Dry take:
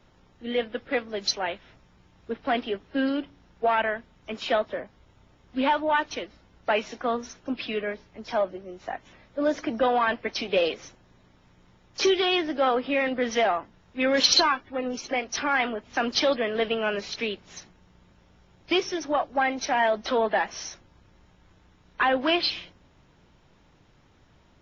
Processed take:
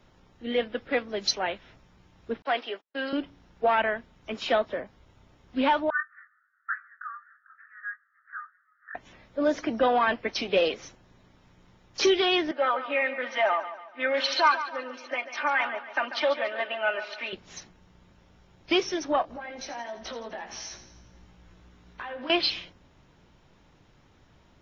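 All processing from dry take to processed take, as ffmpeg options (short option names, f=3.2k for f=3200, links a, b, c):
-filter_complex "[0:a]asettb=1/sr,asplit=3[a][b][c];[a]atrim=end=2.424[d];[b]atrim=start=2.42:end=3.13,asetpts=PTS-STARTPTS,afade=t=in:d=0.004:c=qsin,afade=t=out:st=0.706:d=0.004:c=qsin,highpass=550,agate=range=-39dB:threshold=-50dB:ratio=16:release=100:detection=peak[e];[c]atrim=start=3.126[f];[d][e]acrossfade=d=0.004:c1=hsin:c2=qsin[g];[g][f]acrossfade=d=0.004:c1=qsin:c2=hsin,asettb=1/sr,asplit=3[h][i][j];[h]atrim=end=5.904[k];[i]atrim=start=5.9:end=8.95,asetpts=PTS-STARTPTS,afade=t=in:d=0.004:c=qsin,afade=t=out:st=3.046:d=0.004:c=qsin,asuperpass=centerf=1500:order=12:qfactor=2.3,asplit=2[l][m];[m]adelay=20,volume=-7.5dB[n];[l][n]amix=inputs=2:normalize=0,atrim=end_sample=134505[o];[j]atrim=start=8.946[p];[k][o]acrossfade=d=0.004:c1=hsin:c2=qsin[q];[q][p]acrossfade=d=0.004:c1=qsin:c2=hsin,asettb=1/sr,asplit=3[r][s][t];[r]atrim=end=12.514[u];[s]atrim=start=12.51:end=17.33,asetpts=PTS-STARTPTS,afade=t=in:d=0.004:c=qsin,afade=t=out:st=4.816:d=0.004:c=qsin,highpass=700,lowpass=2.3k,aecho=1:1:3.3:0.85,atrim=end_sample=212562,aecho=1:1:142|284|426|568:0.251|0.103|0.0422|0.0173,atrim=end_sample=212562[v];[t]atrim=start=17.326[w];[u][v]acrossfade=d=0.004:c1=hsin:c2=qsin[x];[x][w]acrossfade=d=0.004:c1=qsin:c2=hsin,asettb=1/sr,asplit=3[y][z][aa];[y]atrim=end=19.224[ab];[z]atrim=start=19.22:end=22.3,asetpts=PTS-STARTPTS,afade=t=in:d=0.004:c=qsin,afade=t=out:st=3.076:d=0.004:c=qsin,acompressor=threshold=-37dB:ratio=8:attack=3.2:release=140:knee=1:detection=peak,asplit=2[ac][ad];[ad]adelay=17,volume=-3dB[ae];[ac][ae]amix=inputs=2:normalize=0,atrim=end_sample=135828,aecho=1:1:84|168|252|336|420|504:0.266|0.152|0.0864|0.0493|0.0281|0.016,atrim=end_sample=135828[af];[aa]atrim=start=22.296[ag];[ab][af]acrossfade=d=0.004:c1=hsin:c2=qsin[ah];[ah][ag]acrossfade=d=0.004:c1=qsin:c2=hsin"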